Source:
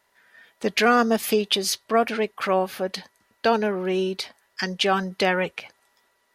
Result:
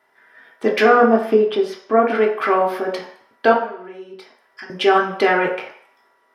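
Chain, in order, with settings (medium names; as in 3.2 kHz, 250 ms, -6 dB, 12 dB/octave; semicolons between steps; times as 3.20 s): 0.83–2.10 s: low-pass 1.2 kHz 6 dB/octave; 3.53–4.70 s: compression 10:1, threshold -39 dBFS, peak gain reduction 20 dB; reverberation RT60 0.60 s, pre-delay 3 ms, DRR -1.5 dB; trim -5.5 dB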